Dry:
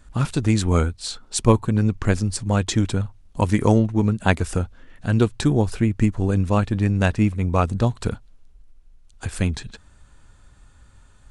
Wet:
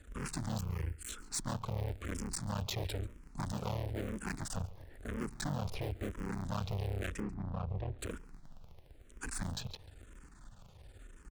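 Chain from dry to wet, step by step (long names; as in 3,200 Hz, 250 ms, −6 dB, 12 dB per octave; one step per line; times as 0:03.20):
sub-harmonics by changed cycles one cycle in 3, muted
0:04.57–0:05.28: parametric band 2,900 Hz −13 dB 0.91 octaves
background noise brown −53 dBFS
tube saturation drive 31 dB, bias 0.25
0:00.59–0:01.09: phaser with its sweep stopped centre 1,600 Hz, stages 4
0:07.20–0:07.99: head-to-tape spacing loss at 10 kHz 44 dB
single-tap delay 139 ms −21 dB
frequency shifter mixed with the dry sound −1 Hz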